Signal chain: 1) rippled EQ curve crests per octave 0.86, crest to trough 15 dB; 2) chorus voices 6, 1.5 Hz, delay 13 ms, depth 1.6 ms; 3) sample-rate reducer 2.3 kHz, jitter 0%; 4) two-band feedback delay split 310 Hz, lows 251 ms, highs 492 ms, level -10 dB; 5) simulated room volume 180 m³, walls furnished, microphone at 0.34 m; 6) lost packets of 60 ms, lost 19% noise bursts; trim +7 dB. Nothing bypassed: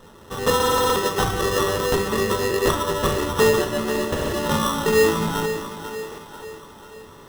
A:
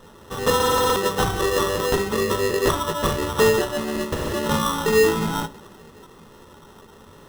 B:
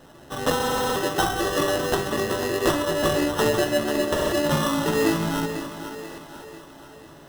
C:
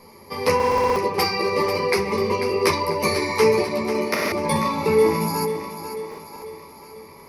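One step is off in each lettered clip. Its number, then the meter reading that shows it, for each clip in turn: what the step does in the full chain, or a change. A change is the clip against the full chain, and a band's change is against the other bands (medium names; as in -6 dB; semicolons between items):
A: 4, momentary loudness spread change -8 LU; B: 1, 250 Hz band +3.5 dB; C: 3, 8 kHz band -4.5 dB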